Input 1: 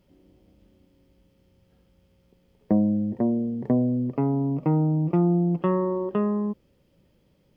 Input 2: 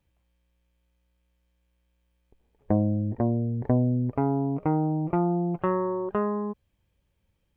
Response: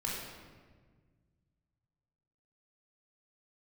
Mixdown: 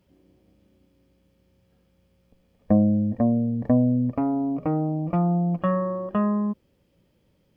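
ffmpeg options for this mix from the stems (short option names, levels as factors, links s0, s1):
-filter_complex "[0:a]highpass=f=76:w=0.5412,highpass=f=76:w=1.3066,volume=0.794[s0];[1:a]volume=0.944[s1];[s0][s1]amix=inputs=2:normalize=0"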